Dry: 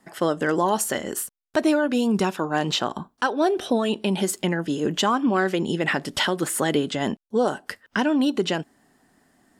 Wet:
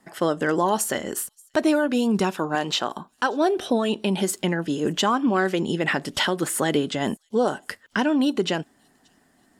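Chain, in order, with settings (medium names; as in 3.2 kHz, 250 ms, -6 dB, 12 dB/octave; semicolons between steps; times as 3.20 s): 2.55–3.12 s: bass shelf 180 Hz -12 dB; on a send: feedback echo behind a high-pass 580 ms, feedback 46%, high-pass 5.5 kHz, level -24 dB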